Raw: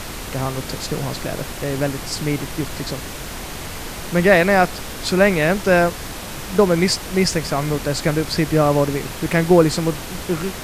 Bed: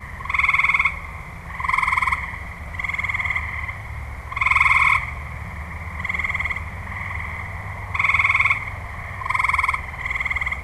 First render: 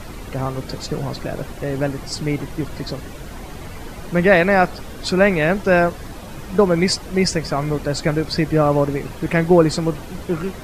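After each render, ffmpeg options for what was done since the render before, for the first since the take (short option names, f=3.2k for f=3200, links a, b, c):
-af "afftdn=nr=11:nf=-31"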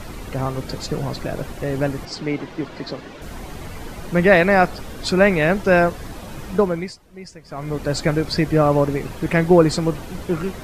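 -filter_complex "[0:a]asettb=1/sr,asplit=3[a][b][c];[a]atrim=end=2.054[d];[b]atrim=start=2.05:end=3.22,asetpts=PTS-STARTPTS,afade=t=in:d=0.004:c=qsin,afade=t=out:st=1.166:d=0.004:c=qsin,acrossover=split=180 5600:gain=0.224 1 0.141[e][f][g];[e][f][g]amix=inputs=3:normalize=0[h];[c]atrim=start=3.216[i];[d][h]acrossfade=d=0.004:c1=hsin:c2=qsin[j];[j][i]acrossfade=d=0.004:c1=qsin:c2=hsin,asplit=3[k][l][m];[k]atrim=end=6.93,asetpts=PTS-STARTPTS,afade=t=out:st=6.48:d=0.45:silence=0.1[n];[l]atrim=start=6.93:end=7.45,asetpts=PTS-STARTPTS,volume=-20dB[o];[m]atrim=start=7.45,asetpts=PTS-STARTPTS,afade=t=in:d=0.45:silence=0.1[p];[n][o][p]concat=n=3:v=0:a=1"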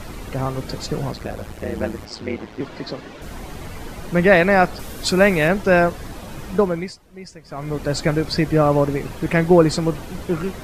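-filter_complex "[0:a]asettb=1/sr,asplit=3[a][b][c];[a]atrim=end=1.114[d];[b]atrim=start=1.11:end=2.61,asetpts=PTS-STARTPTS,afade=t=in:d=0.004:c=qsin,afade=t=out:st=1.496:d=0.004:c=qsin,aeval=exprs='val(0)*sin(2*PI*55*n/s)':c=same[e];[c]atrim=start=2.606[f];[d][e]acrossfade=d=0.004:c1=hsin:c2=qsin[g];[g][f]acrossfade=d=0.004:c1=qsin:c2=hsin,asettb=1/sr,asplit=3[h][i][j];[h]atrim=end=4.794[k];[i]atrim=start=4.79:end=5.48,asetpts=PTS-STARTPTS,afade=t=in:d=0.004:c=qsin,afade=t=out:st=0.686:d=0.004:c=qsin,highshelf=f=6.3k:g=9.5[l];[j]atrim=start=5.476[m];[k][l]acrossfade=d=0.004:c1=hsin:c2=qsin[n];[n][m]acrossfade=d=0.004:c1=qsin:c2=hsin"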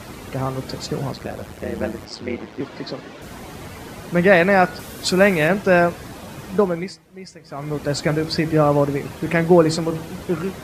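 -af "highpass=83,bandreject=f=161.4:t=h:w=4,bandreject=f=322.8:t=h:w=4,bandreject=f=484.2:t=h:w=4,bandreject=f=645.6:t=h:w=4,bandreject=f=807:t=h:w=4,bandreject=f=968.4:t=h:w=4,bandreject=f=1.1298k:t=h:w=4,bandreject=f=1.2912k:t=h:w=4,bandreject=f=1.4526k:t=h:w=4,bandreject=f=1.614k:t=h:w=4,bandreject=f=1.7754k:t=h:w=4,bandreject=f=1.9368k:t=h:w=4,bandreject=f=2.0982k:t=h:w=4,bandreject=f=2.2596k:t=h:w=4,bandreject=f=2.421k:t=h:w=4,bandreject=f=2.5824k:t=h:w=4,bandreject=f=2.7438k:t=h:w=4,bandreject=f=2.9052k:t=h:w=4,bandreject=f=3.0666k:t=h:w=4,bandreject=f=3.228k:t=h:w=4"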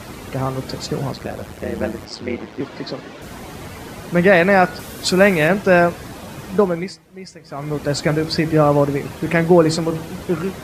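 -af "volume=2dB,alimiter=limit=-2dB:level=0:latency=1"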